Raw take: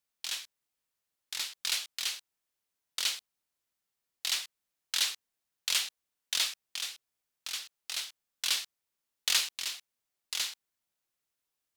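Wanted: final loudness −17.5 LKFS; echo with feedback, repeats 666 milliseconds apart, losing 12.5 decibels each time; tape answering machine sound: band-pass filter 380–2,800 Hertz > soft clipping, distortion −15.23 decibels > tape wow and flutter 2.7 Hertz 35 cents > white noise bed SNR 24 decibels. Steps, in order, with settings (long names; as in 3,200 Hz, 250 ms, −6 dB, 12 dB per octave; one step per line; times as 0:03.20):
band-pass filter 380–2,800 Hz
repeating echo 666 ms, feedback 24%, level −12.5 dB
soft clipping −28 dBFS
tape wow and flutter 2.7 Hz 35 cents
white noise bed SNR 24 dB
level +24 dB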